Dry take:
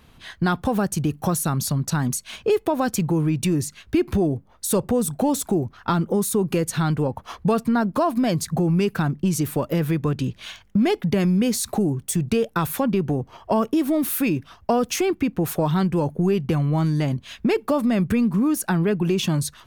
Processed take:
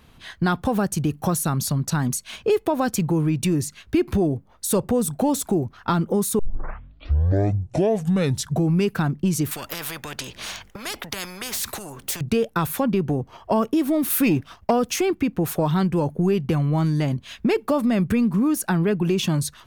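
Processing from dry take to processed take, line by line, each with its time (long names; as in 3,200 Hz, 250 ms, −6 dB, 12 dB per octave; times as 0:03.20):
0:06.39: tape start 2.36 s
0:09.51–0:12.21: every bin compressed towards the loudest bin 4 to 1
0:14.10–0:14.71: leveller curve on the samples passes 1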